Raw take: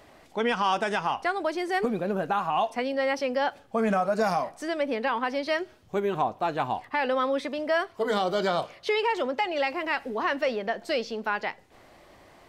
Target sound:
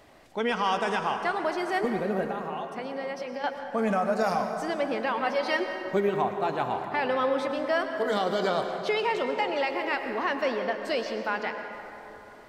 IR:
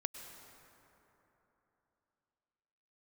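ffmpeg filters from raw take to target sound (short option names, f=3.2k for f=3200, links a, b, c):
-filter_complex "[0:a]asettb=1/sr,asplit=3[a][b][c];[a]atrim=end=2.284[d];[b]atrim=start=2.28:end=3.44,asetpts=PTS-STARTPTS,afade=t=in:d=0.004:c=qsin,afade=t=out:st=1.156:d=0.004:c=qsin,acompressor=threshold=-32dB:ratio=5[e];[c]atrim=start=3.436[f];[d][e]acrossfade=d=0.004:c1=hsin:c2=qsin[g];[g][f]acrossfade=d=0.004:c1=qsin:c2=hsin,asettb=1/sr,asplit=3[h][i][j];[h]atrim=end=5.214[k];[i]atrim=start=5.21:end=6.09,asetpts=PTS-STARTPTS,afade=t=in:d=0.004:c=qsin,afade=t=out:st=0.876:d=0.004:c=qsin,aecho=1:1:5.4:0.81,atrim=end_sample=38808[l];[j]atrim=start=6.086[m];[k][l]acrossfade=d=0.004:c1=hsin:c2=qsin[n];[n][m]acrossfade=d=0.004:c1=qsin:c2=hsin[o];[1:a]atrim=start_sample=2205[p];[o][p]afir=irnorm=-1:irlink=0"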